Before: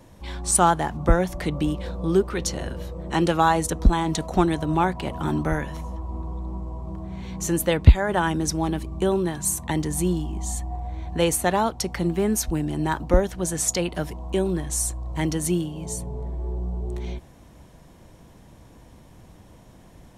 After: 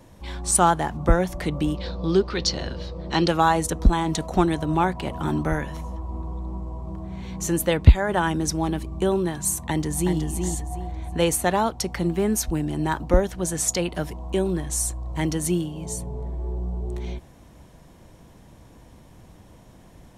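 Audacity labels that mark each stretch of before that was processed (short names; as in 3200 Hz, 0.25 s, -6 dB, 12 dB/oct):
1.770000	3.280000	synth low-pass 4600 Hz, resonance Q 3.8
9.690000	10.170000	echo throw 0.37 s, feedback 30%, level -5.5 dB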